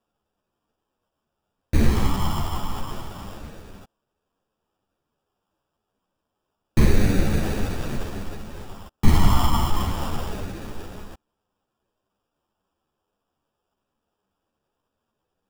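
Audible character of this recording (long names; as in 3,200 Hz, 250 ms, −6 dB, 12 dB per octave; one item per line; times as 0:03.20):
phaser sweep stages 8, 0.29 Hz, lowest notch 470–1,300 Hz
aliases and images of a low sample rate 2,100 Hz, jitter 0%
a shimmering, thickened sound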